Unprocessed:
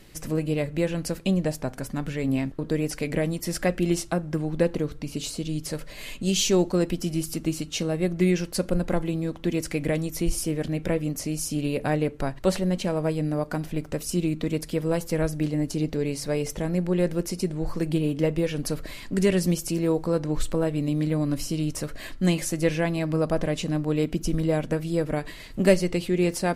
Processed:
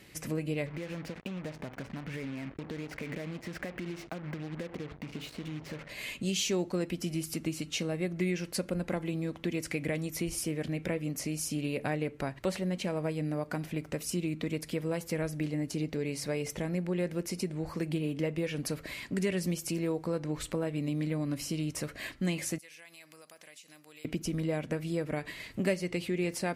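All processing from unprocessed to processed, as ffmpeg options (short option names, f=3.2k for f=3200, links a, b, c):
-filter_complex "[0:a]asettb=1/sr,asplit=3[a][b][c];[a]atrim=end=0.664[d];[b]atrim=start=0.66:end=5.89,asetpts=PTS-STARTPTS,afade=t=in:d=0.004:c=qsin,afade=t=out:st=5.226:d=0.004:c=qsin,lowpass=2.4k,acompressor=threshold=-30dB:ratio=16:attack=3.2:release=140:knee=1:detection=peak,acrusher=bits=6:mix=0:aa=0.5[e];[c]atrim=start=5.886[f];[d][e]acrossfade=d=0.004:c1=hsin:c2=qsin[g];[g][f]acrossfade=d=0.004:c1=qsin:c2=hsin,asettb=1/sr,asplit=3[h][i][j];[h]atrim=end=22.584[k];[i]atrim=start=22.58:end=24.05,asetpts=PTS-STARTPTS,afade=t=in:d=0.004:c=qsin,afade=t=out:st=1.466:d=0.004:c=qsin,aderivative,acompressor=threshold=-47dB:ratio=5:attack=3.2:release=140:knee=1:detection=peak[l];[j]atrim=start=24.046[m];[k][l]acrossfade=d=0.004:c1=hsin:c2=qsin[n];[n][m]acrossfade=d=0.004:c1=qsin:c2=hsin,highpass=70,equalizer=f=2.2k:w=2:g=6,acompressor=threshold=-28dB:ratio=2,volume=-3.5dB"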